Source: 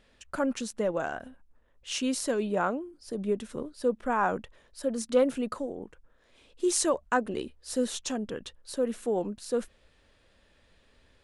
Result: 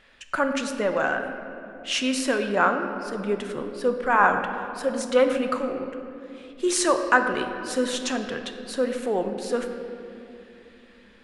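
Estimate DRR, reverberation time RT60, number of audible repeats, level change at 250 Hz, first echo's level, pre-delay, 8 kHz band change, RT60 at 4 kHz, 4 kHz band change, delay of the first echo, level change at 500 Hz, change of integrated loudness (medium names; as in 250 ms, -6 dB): 5.5 dB, 2.7 s, no echo, +3.5 dB, no echo, 3 ms, +2.5 dB, 1.5 s, +7.5 dB, no echo, +5.0 dB, +5.5 dB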